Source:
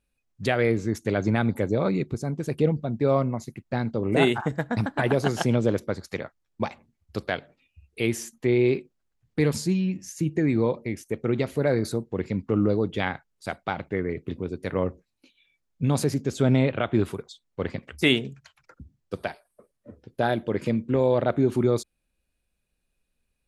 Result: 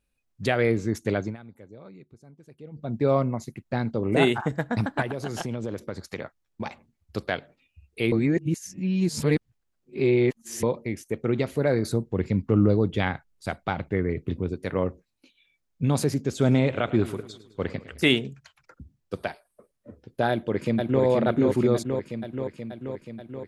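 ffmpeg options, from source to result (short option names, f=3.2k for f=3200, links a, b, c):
-filter_complex "[0:a]asettb=1/sr,asplit=3[a][b][c];[a]atrim=end=5.024[d];[b]atrim=start=5.02:end=6.66,asetpts=PTS-STARTPTS,afade=t=in:d=0.004:c=qsin,afade=t=out:st=1.636:d=0.004:c=qsin,acompressor=threshold=-27dB:ratio=5:attack=3.2:release=140:knee=1:detection=peak[e];[c]atrim=start=6.656[f];[d][e]acrossfade=d=0.004:c1=hsin:c2=qsin[g];[g][f]acrossfade=d=0.004:c1=qsin:c2=hsin,asettb=1/sr,asplit=3[h][i][j];[h]atrim=end=11.894[k];[i]atrim=start=11.89:end=14.54,asetpts=PTS-STARTPTS,afade=t=in:d=0.004:c=qsin,afade=t=out:st=2.646:d=0.004:c=qsin,lowshelf=f=140:g=9[l];[j]atrim=start=14.536[m];[k][l]acrossfade=d=0.004:c1=hsin:c2=qsin[n];[n][m]acrossfade=d=0.004:c1=qsin:c2=hsin,asplit=3[o][p][q];[o]afade=t=out:st=16.4:d=0.02[r];[p]aecho=1:1:105|210|315|420|525:0.15|0.0823|0.0453|0.0249|0.0137,afade=t=in:st=16.4:d=0.02,afade=t=out:st=18.14:d=0.02[s];[q]afade=t=in:st=18.14:d=0.02[t];[r][s][t]amix=inputs=3:normalize=0,asplit=2[u][v];[v]afade=t=in:st=20.3:d=0.01,afade=t=out:st=21.03:d=0.01,aecho=0:1:480|960|1440|1920|2400|2880|3360|3840|4320|4800|5280|5760:0.749894|0.524926|0.367448|0.257214|0.18005|0.126035|0.0882243|0.061757|0.0432299|0.0302609|0.0211827|0.0148279[w];[u][w]amix=inputs=2:normalize=0,asplit=5[x][y][z][aa][ab];[x]atrim=end=1.37,asetpts=PTS-STARTPTS,afade=t=out:st=1.13:d=0.24:silence=0.0794328[ac];[y]atrim=start=1.37:end=2.71,asetpts=PTS-STARTPTS,volume=-22dB[ad];[z]atrim=start=2.71:end=8.122,asetpts=PTS-STARTPTS,afade=t=in:d=0.24:silence=0.0794328[ae];[aa]atrim=start=8.118:end=10.632,asetpts=PTS-STARTPTS,areverse[af];[ab]atrim=start=10.628[ag];[ac][ad][ae]concat=n=3:v=0:a=1[ah];[ah][af]acrossfade=d=0.004:c1=hsin:c2=hsin[ai];[ai][ag]acrossfade=d=0.004:c1=hsin:c2=hsin"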